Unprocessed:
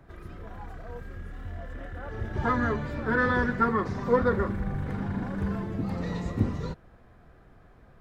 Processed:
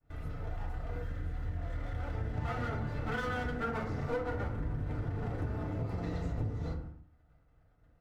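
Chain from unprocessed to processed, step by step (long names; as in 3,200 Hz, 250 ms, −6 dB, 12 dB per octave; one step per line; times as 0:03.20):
lower of the sound and its delayed copy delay 1.5 ms
low-shelf EQ 200 Hz +5.5 dB
downward expander −40 dBFS
feedback delay network reverb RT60 0.48 s, low-frequency decay 1.35×, high-frequency decay 0.5×, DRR −2.5 dB
downward compressor 6 to 1, threshold −27 dBFS, peak gain reduction 14.5 dB
level −5 dB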